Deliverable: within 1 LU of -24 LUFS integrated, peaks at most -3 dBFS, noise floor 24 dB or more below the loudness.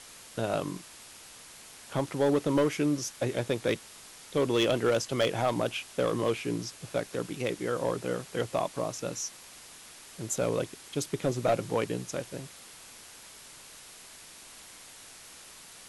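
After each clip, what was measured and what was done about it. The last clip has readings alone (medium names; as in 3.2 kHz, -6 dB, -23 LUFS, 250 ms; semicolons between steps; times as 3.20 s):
clipped samples 0.5%; clipping level -19.0 dBFS; noise floor -50 dBFS; noise floor target -55 dBFS; loudness -30.5 LUFS; peak level -19.0 dBFS; loudness target -24.0 LUFS
-> clip repair -19 dBFS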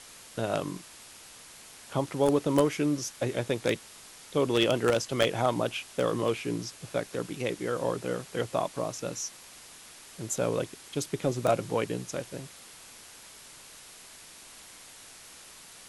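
clipped samples 0.0%; noise floor -50 dBFS; noise floor target -54 dBFS
-> noise reduction 6 dB, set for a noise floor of -50 dBFS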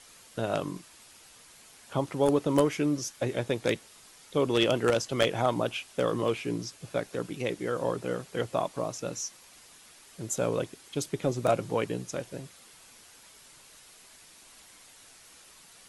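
noise floor -55 dBFS; loudness -30.0 LUFS; peak level -10.0 dBFS; loudness target -24.0 LUFS
-> trim +6 dB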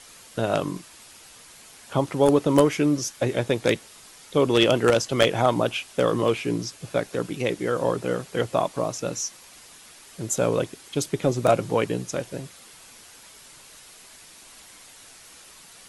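loudness -24.0 LUFS; peak level -4.0 dBFS; noise floor -49 dBFS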